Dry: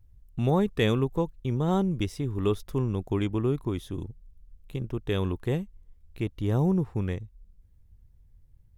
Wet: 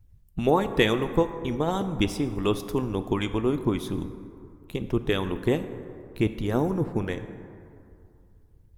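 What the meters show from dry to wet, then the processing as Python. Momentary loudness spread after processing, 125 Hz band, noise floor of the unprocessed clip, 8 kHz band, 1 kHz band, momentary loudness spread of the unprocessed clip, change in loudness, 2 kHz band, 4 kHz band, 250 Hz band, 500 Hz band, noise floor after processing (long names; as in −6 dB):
16 LU, −3.0 dB, −58 dBFS, can't be measured, +5.0 dB, 13 LU, +1.5 dB, +7.0 dB, +6.0 dB, +2.0 dB, +3.5 dB, −56 dBFS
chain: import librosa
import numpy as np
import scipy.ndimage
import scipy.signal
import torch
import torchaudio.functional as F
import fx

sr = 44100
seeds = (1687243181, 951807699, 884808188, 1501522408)

y = fx.hpss(x, sr, part='harmonic', gain_db=-14)
y = fx.rev_plate(y, sr, seeds[0], rt60_s=2.5, hf_ratio=0.4, predelay_ms=0, drr_db=9.5)
y = y * 10.0 ** (7.5 / 20.0)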